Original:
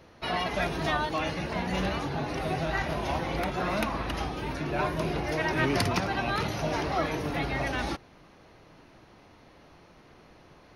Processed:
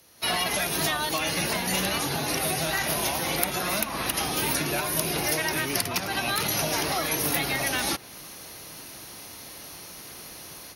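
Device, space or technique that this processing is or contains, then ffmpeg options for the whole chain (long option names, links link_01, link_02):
FM broadcast chain: -filter_complex "[0:a]highpass=frequency=58:poles=1,dynaudnorm=framelen=170:gausssize=3:maxgain=16dB,acrossover=split=97|3500[link_01][link_02][link_03];[link_01]acompressor=threshold=-38dB:ratio=4[link_04];[link_02]acompressor=threshold=-16dB:ratio=4[link_05];[link_03]acompressor=threshold=-40dB:ratio=4[link_06];[link_04][link_05][link_06]amix=inputs=3:normalize=0,aemphasis=mode=production:type=75fm,alimiter=limit=-9.5dB:level=0:latency=1:release=216,asoftclip=type=hard:threshold=-11.5dB,lowpass=frequency=15000:width=0.5412,lowpass=frequency=15000:width=1.3066,aemphasis=mode=production:type=75fm,volume=-8.5dB"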